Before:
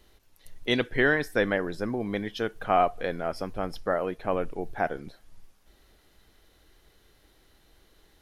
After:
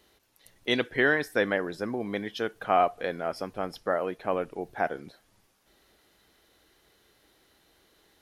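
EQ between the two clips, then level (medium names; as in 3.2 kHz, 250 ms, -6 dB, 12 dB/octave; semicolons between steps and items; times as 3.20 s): high-pass 200 Hz 6 dB/octave; 0.0 dB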